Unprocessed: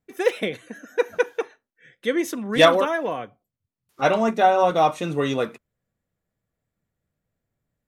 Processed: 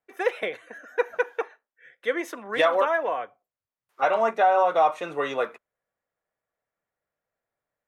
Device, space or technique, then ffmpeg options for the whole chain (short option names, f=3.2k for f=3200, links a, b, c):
DJ mixer with the lows and highs turned down: -filter_complex "[0:a]acrossover=split=480 2300:gain=0.0794 1 0.224[a][b][c];[a][b][c]amix=inputs=3:normalize=0,alimiter=limit=-14dB:level=0:latency=1:release=125,volume=3dB"